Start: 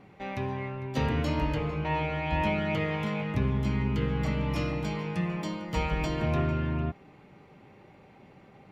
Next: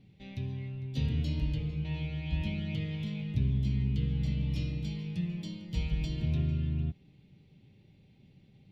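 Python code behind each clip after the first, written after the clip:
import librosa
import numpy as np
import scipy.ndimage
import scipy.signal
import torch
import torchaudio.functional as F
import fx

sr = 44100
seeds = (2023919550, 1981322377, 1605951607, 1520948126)

y = fx.curve_eq(x, sr, hz=(140.0, 1200.0, 3600.0, 7100.0), db=(0, -28, -1, -10))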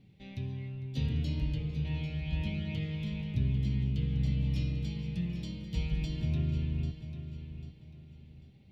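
y = fx.echo_feedback(x, sr, ms=794, feedback_pct=31, wet_db=-11.0)
y = y * librosa.db_to_amplitude(-1.0)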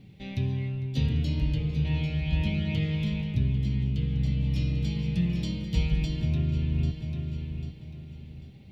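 y = fx.rider(x, sr, range_db=3, speed_s=0.5)
y = y * librosa.db_to_amplitude(6.0)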